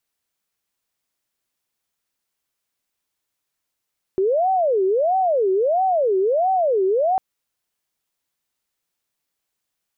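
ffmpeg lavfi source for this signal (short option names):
-f lavfi -i "aevalsrc='0.168*sin(2*PI*(569.5*t-194.5/(2*PI*1.5)*sin(2*PI*1.5*t)))':d=3:s=44100"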